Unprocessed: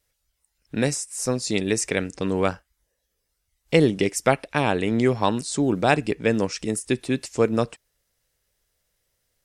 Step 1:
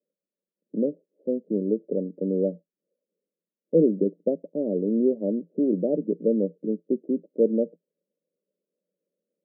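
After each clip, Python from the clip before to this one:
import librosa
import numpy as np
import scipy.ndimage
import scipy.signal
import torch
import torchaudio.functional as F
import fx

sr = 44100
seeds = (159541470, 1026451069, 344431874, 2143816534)

y = scipy.signal.sosfilt(scipy.signal.cheby1(5, 1.0, [170.0, 590.0], 'bandpass', fs=sr, output='sos'), x)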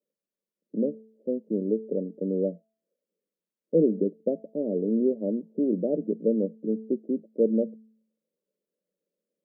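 y = fx.comb_fb(x, sr, f0_hz=220.0, decay_s=0.63, harmonics='all', damping=0.0, mix_pct=50)
y = F.gain(torch.from_numpy(y), 3.5).numpy()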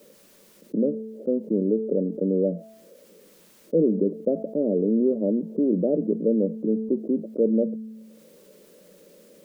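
y = fx.env_flatten(x, sr, amount_pct=50)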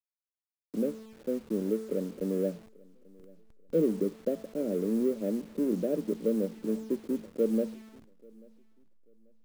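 y = fx.delta_hold(x, sr, step_db=-37.0)
y = fx.echo_feedback(y, sr, ms=838, feedback_pct=28, wet_db=-21)
y = fx.upward_expand(y, sr, threshold_db=-31.0, expansion=1.5)
y = F.gain(torch.from_numpy(y), -5.0).numpy()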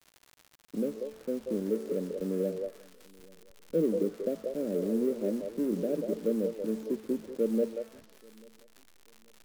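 y = fx.echo_stepped(x, sr, ms=186, hz=560.0, octaves=1.4, feedback_pct=70, wet_db=-2.5)
y = fx.dmg_crackle(y, sr, seeds[0], per_s=130.0, level_db=-39.0)
y = fx.vibrato(y, sr, rate_hz=0.81, depth_cents=21.0)
y = F.gain(torch.from_numpy(y), -1.5).numpy()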